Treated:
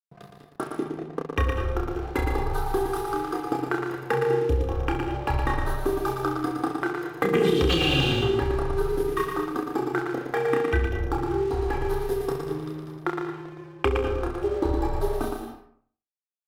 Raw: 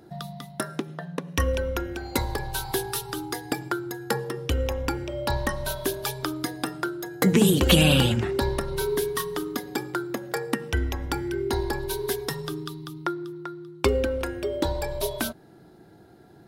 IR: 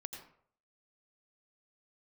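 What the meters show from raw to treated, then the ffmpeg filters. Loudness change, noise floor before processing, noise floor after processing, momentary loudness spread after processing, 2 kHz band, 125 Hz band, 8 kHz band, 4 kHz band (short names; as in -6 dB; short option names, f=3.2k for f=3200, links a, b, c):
+0.5 dB, -51 dBFS, -63 dBFS, 10 LU, 0.0 dB, -1.0 dB, -12.5 dB, -3.0 dB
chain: -filter_complex "[0:a]afwtdn=0.0224,equalizer=f=1.3k:w=3.7:g=4,aecho=1:1:2.5:0.64,aecho=1:1:30|66|109.2|161|223.2:0.631|0.398|0.251|0.158|0.1,acompressor=threshold=-19dB:ratio=6,aeval=exprs='sgn(val(0))*max(abs(val(0))-0.0075,0)':c=same,asplit=2[a][b];[1:a]atrim=start_sample=2205,adelay=116[c];[b][c]afir=irnorm=-1:irlink=0,volume=-1dB[d];[a][d]amix=inputs=2:normalize=0"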